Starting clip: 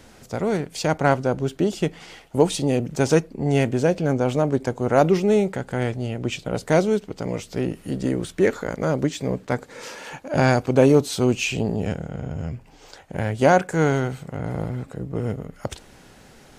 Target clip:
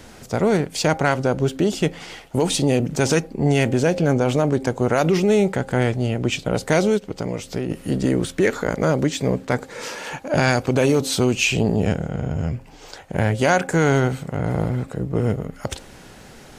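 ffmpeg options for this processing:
-filter_complex "[0:a]bandreject=f=265.9:t=h:w=4,bandreject=f=531.8:t=h:w=4,bandreject=f=797.7:t=h:w=4,acrossover=split=1500[a][b];[a]alimiter=limit=-15.5dB:level=0:latency=1:release=77[c];[c][b]amix=inputs=2:normalize=0,asplit=3[d][e][f];[d]afade=t=out:st=6.97:d=0.02[g];[e]acompressor=threshold=-28dB:ratio=4,afade=t=in:st=6.97:d=0.02,afade=t=out:st=7.69:d=0.02[h];[f]afade=t=in:st=7.69:d=0.02[i];[g][h][i]amix=inputs=3:normalize=0,volume=5.5dB"

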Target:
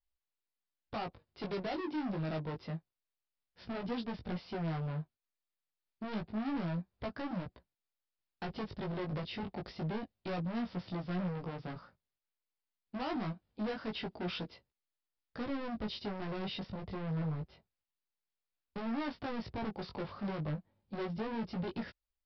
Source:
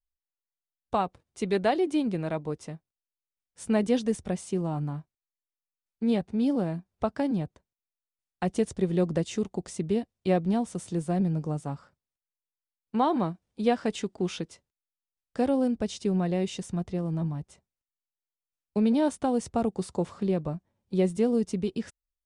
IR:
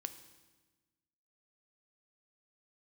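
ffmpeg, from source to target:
-af "alimiter=limit=-18dB:level=0:latency=1:release=349,aresample=11025,asoftclip=type=hard:threshold=-35.5dB,aresample=44100,flanger=delay=16.5:depth=3.3:speed=0.27,volume=3dB"

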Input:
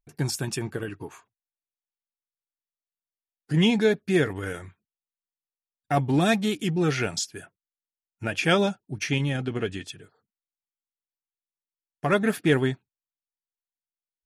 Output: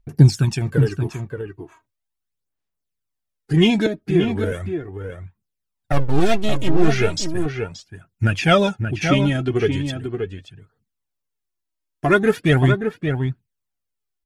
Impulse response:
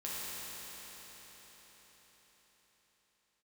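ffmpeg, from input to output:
-filter_complex "[0:a]acrossover=split=7000[a][b];[b]acompressor=threshold=-49dB:ratio=4:attack=1:release=60[c];[a][c]amix=inputs=2:normalize=0,lowshelf=f=210:g=11,asettb=1/sr,asplit=3[d][e][f];[d]atrim=end=3.864[g];[e]atrim=start=3.86:end=4.52,asetpts=PTS-STARTPTS,afade=t=in:d=0.004:c=qsin,afade=t=out:st=0.656:d=0.004:c=qsin,acrossover=split=430|1000|2800[h][i][j][k];[h]acompressor=threshold=-24dB:ratio=4[l];[i]acompressor=threshold=-33dB:ratio=4[m];[j]acompressor=threshold=-44dB:ratio=4[n];[k]acompressor=threshold=-53dB:ratio=4[o];[l][m][n][o]amix=inputs=4:normalize=0[p];[f]atrim=start=4.516[q];[g][p]acrossfade=d=0.004:c1=hsin:c2=qsin[r];[r][q]acrossfade=d=0.004:c1=qsin:c2=hsin,asettb=1/sr,asplit=3[s][t][u];[s]atrim=end=5.924[v];[t]atrim=start=5.92:end=6.88,asetpts=PTS-STARTPTS,afade=t=in:d=0.004:c=qsin,afade=t=out:st=0.956:d=0.004:c=qsin,aeval=exprs='max(val(0),0)':c=same[w];[u]atrim=start=6.876[x];[v][w]acrossfade=d=0.004:c1=hsin:c2=qsin[y];[y][x]acrossfade=d=0.004:c1=qsin:c2=hsin,aphaser=in_gain=1:out_gain=1:delay=3.2:decay=0.62:speed=0.38:type=sinusoidal,asplit=2[z][aa];[aa]adelay=577.3,volume=-6dB,highshelf=f=4k:g=-13[ab];[z][ab]amix=inputs=2:normalize=0,volume=2.5dB"

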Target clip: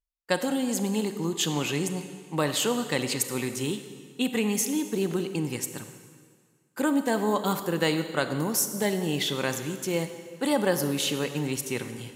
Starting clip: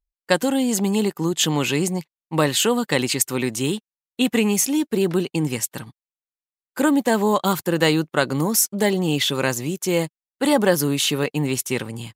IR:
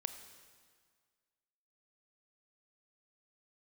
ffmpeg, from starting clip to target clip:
-filter_complex "[1:a]atrim=start_sample=2205,asetrate=41895,aresample=44100[a];[0:a][a]afir=irnorm=-1:irlink=0,volume=-5.5dB"

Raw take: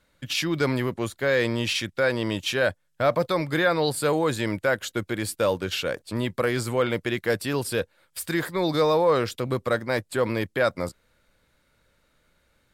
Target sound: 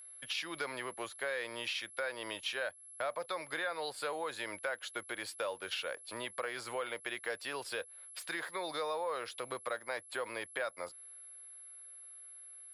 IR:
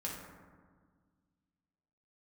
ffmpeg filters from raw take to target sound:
-filter_complex "[0:a]aeval=exprs='val(0)+0.0251*sin(2*PI*11000*n/s)':c=same,acrossover=split=490 5300:gain=0.0708 1 0.178[a][b][c];[a][b][c]amix=inputs=3:normalize=0,acompressor=threshold=-33dB:ratio=3,volume=-3.5dB"

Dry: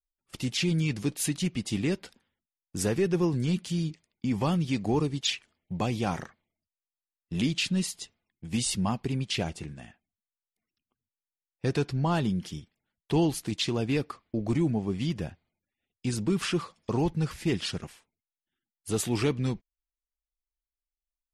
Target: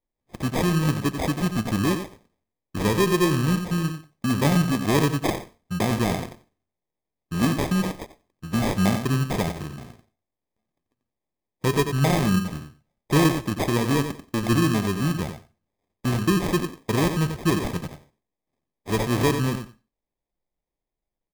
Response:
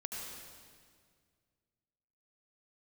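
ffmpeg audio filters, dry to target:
-filter_complex "[0:a]flanger=delay=4.3:depth=6.5:regen=83:speed=0.85:shape=triangular,asplit=2[a][b];[b]adelay=90,lowpass=f=2.8k:p=1,volume=-8dB,asplit=2[c][d];[d]adelay=90,lowpass=f=2.8k:p=1,volume=0.15[e];[a][c][e]amix=inputs=3:normalize=0,acrusher=samples=31:mix=1:aa=0.000001,asplit=2[f][g];[1:a]atrim=start_sample=2205,atrim=end_sample=6615[h];[g][h]afir=irnorm=-1:irlink=0,volume=-18.5dB[i];[f][i]amix=inputs=2:normalize=0,volume=9dB"

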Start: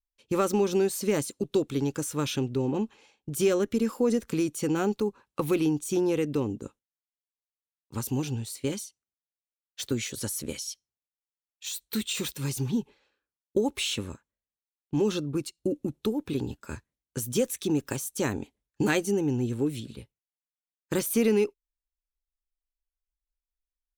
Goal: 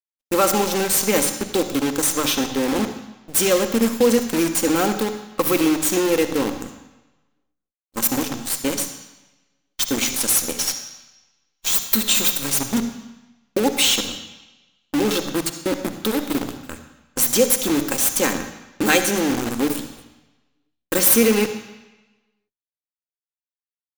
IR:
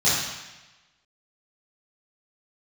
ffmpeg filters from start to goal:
-filter_complex "[0:a]aemphasis=mode=production:type=bsi,bandreject=f=50:t=h:w=6,bandreject=f=100:t=h:w=6,bandreject=f=150:t=h:w=6,bandreject=f=200:t=h:w=6,bandreject=f=250:t=h:w=6,bandreject=f=300:t=h:w=6,asplit=2[a][b];[b]adynamicsmooth=sensitivity=8:basefreq=520,volume=1.5dB[c];[a][c]amix=inputs=2:normalize=0,aecho=1:1:3.8:0.5,acrusher=bits=5:dc=4:mix=0:aa=0.000001,agate=range=-33dB:threshold=-37dB:ratio=3:detection=peak,asplit=2[d][e];[1:a]atrim=start_sample=2205,adelay=44[f];[e][f]afir=irnorm=-1:irlink=0,volume=-25dB[g];[d][g]amix=inputs=2:normalize=0,volume=2dB"

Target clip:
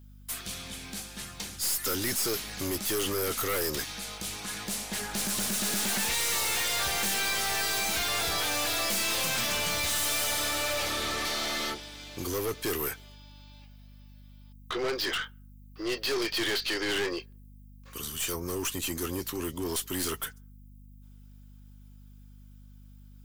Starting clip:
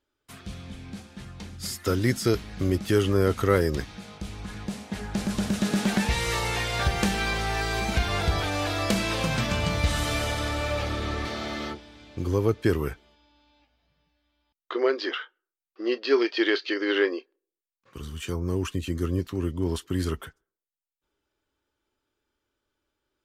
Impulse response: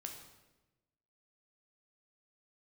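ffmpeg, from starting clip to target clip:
-af "aemphasis=mode=production:type=riaa,aeval=exprs='val(0)+0.00224*(sin(2*PI*50*n/s)+sin(2*PI*2*50*n/s)/2+sin(2*PI*3*50*n/s)/3+sin(2*PI*4*50*n/s)/4+sin(2*PI*5*50*n/s)/5)':c=same,aeval=exprs='(tanh(35.5*val(0)+0.25)-tanh(0.25))/35.5':c=same,volume=4dB"

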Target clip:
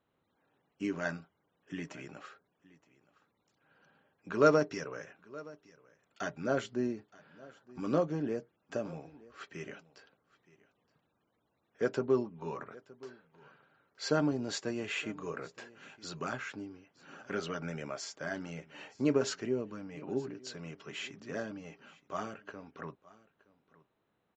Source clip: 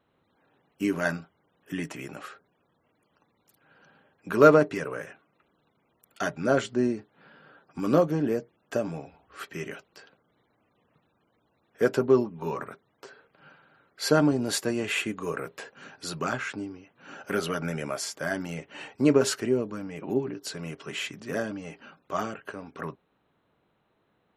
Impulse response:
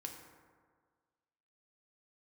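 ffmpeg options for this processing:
-filter_complex "[0:a]asettb=1/sr,asplit=3[a][b][c];[a]atrim=end=4.464[d];[b]atrim=start=4.46:end=5.05,asetpts=PTS-STARTPTS,afade=t=in:d=0.004:c=qsin,afade=t=out:st=0.586:d=0.004:c=qsin,equalizer=f=5.5k:w=4.1:g=14[e];[c]atrim=start=5.046[f];[d][e]acrossfade=d=0.004:c1=hsin:c2=qsin[g];[g][f]acrossfade=d=0.004:c1=qsin:c2=hsin,asplit=2[h][i];[i]aecho=0:1:920:0.0841[j];[h][j]amix=inputs=2:normalize=0,aresample=16000,aresample=44100,volume=-8dB"

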